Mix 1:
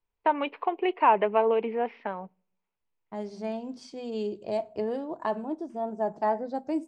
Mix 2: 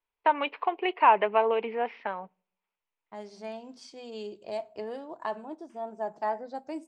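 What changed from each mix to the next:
first voice +4.0 dB
master: add low-shelf EQ 500 Hz −12 dB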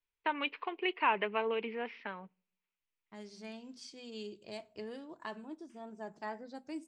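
master: add parametric band 730 Hz −14 dB 1.5 octaves

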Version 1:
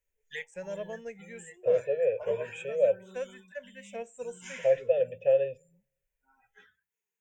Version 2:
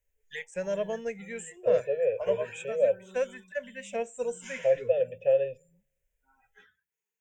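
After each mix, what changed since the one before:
first voice +7.0 dB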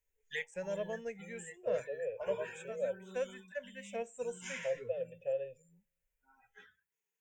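first voice −7.5 dB
second voice −12.0 dB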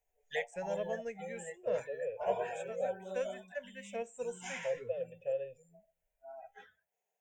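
background: remove Butterworth band-reject 650 Hz, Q 1

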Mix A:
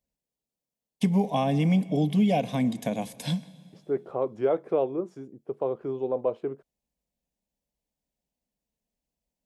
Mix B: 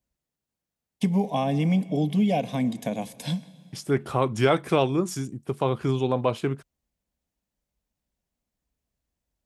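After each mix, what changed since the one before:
second voice: remove resonant band-pass 490 Hz, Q 2.1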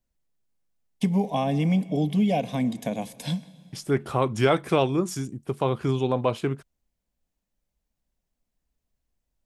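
master: remove high-pass filter 44 Hz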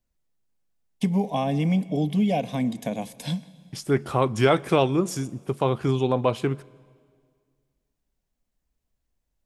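second voice: send on

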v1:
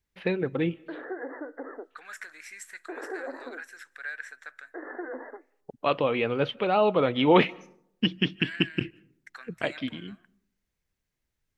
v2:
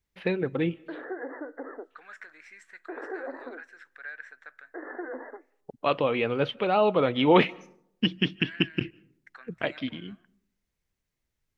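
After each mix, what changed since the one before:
second voice: add head-to-tape spacing loss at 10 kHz 23 dB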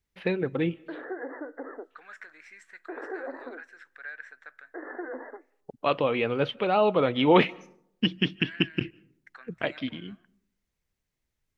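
nothing changed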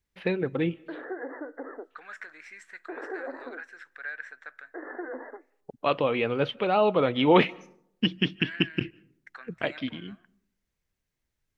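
second voice +3.5 dB

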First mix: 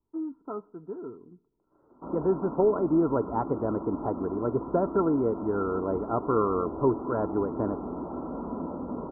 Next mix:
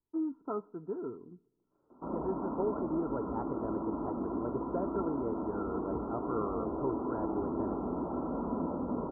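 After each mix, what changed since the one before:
second voice −10.5 dB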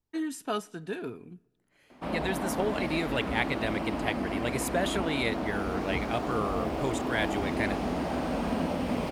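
master: remove Chebyshev low-pass with heavy ripple 1,400 Hz, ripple 9 dB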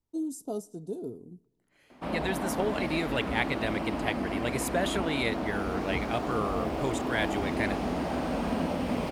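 first voice: add Chebyshev band-stop filter 530–6,900 Hz, order 2

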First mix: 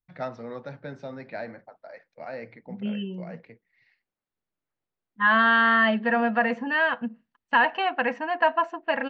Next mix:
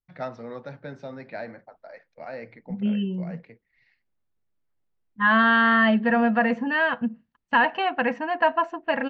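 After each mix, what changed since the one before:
second voice: remove high-pass filter 350 Hz 6 dB per octave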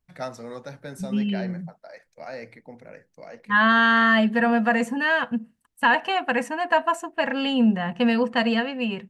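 second voice: entry −1.70 s
master: remove Bessel low-pass filter 2,900 Hz, order 8

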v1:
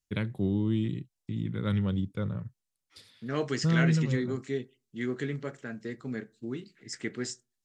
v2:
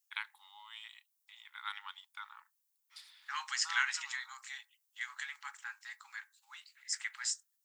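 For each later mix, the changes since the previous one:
second voice: remove high-frequency loss of the air 54 metres
master: add linear-phase brick-wall high-pass 800 Hz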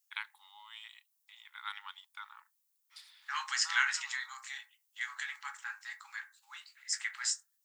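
second voice: send +11.5 dB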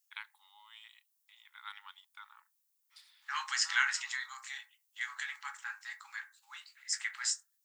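first voice −5.0 dB

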